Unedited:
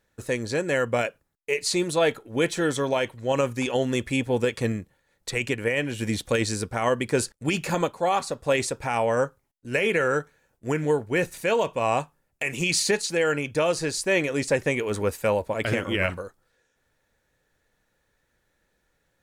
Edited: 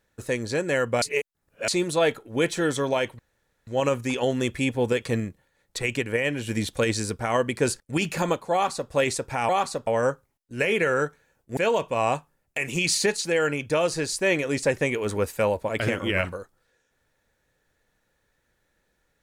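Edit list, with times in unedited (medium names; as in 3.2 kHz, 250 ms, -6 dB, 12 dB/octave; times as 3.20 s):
1.02–1.68 s: reverse
3.19 s: insert room tone 0.48 s
8.05–8.43 s: copy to 9.01 s
10.71–11.42 s: delete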